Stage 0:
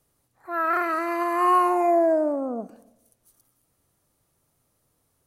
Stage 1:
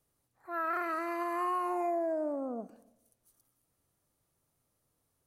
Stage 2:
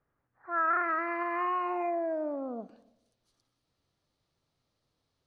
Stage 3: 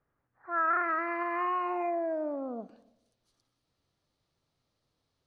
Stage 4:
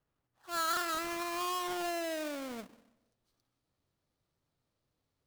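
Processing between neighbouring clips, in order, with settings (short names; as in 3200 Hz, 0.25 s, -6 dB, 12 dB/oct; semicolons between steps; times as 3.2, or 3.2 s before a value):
compressor, threshold -21 dBFS, peak gain reduction 6.5 dB; gain -8 dB
low-pass sweep 1600 Hz -> 4300 Hz, 0.66–2.94
nothing audible
half-waves squared off; gain -8 dB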